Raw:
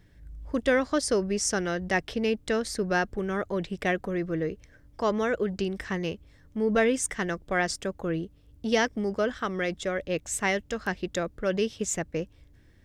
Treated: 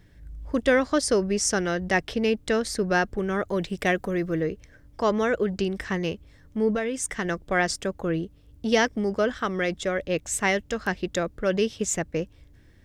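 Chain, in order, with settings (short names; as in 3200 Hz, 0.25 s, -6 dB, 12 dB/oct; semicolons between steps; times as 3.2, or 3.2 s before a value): 3.48–4.41 high shelf 6400 Hz +8 dB; 6.7–7.25 compressor 12:1, threshold -27 dBFS, peak gain reduction 9.5 dB; gain +3 dB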